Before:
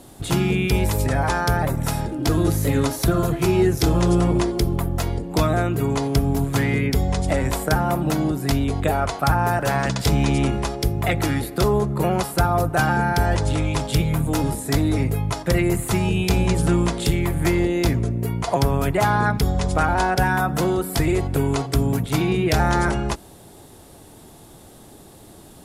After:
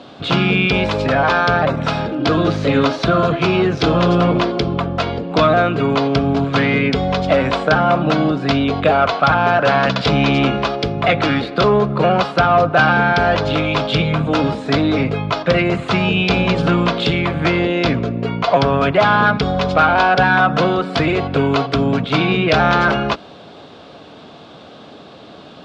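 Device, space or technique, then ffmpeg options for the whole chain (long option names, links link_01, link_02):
overdrive pedal into a guitar cabinet: -filter_complex "[0:a]asplit=2[link_01][link_02];[link_02]highpass=frequency=720:poles=1,volume=13dB,asoftclip=type=tanh:threshold=-7dB[link_03];[link_01][link_03]amix=inputs=2:normalize=0,lowpass=frequency=3100:poles=1,volume=-6dB,highpass=110,equalizer=frequency=110:width_type=q:width=4:gain=-4,equalizer=frequency=360:width_type=q:width=4:gain=-8,equalizer=frequency=870:width_type=q:width=4:gain=-9,equalizer=frequency=1900:width_type=q:width=4:gain=-9,lowpass=frequency=4200:width=0.5412,lowpass=frequency=4200:width=1.3066,asettb=1/sr,asplit=3[link_04][link_05][link_06];[link_04]atrim=end=19.874[link_07];[link_05]atrim=start=19.87:end=20.86,asetpts=PTS-STARTPTS,afade=type=in:duration=0.004:curve=qsin,afade=type=out:start_time=0.986:duration=0.004:curve=qsin,lowpass=frequency=9100:width=0.5412,lowpass=frequency=9100:width=1.3066[link_08];[link_06]atrim=start=20.856[link_09];[link_07][link_08]acrossfade=duration=0.004:curve1=hsin:curve2=qsin[link_10];[link_10][link_09]acrossfade=duration=0.004:curve1=qsin:curve2=hsin,volume=8dB"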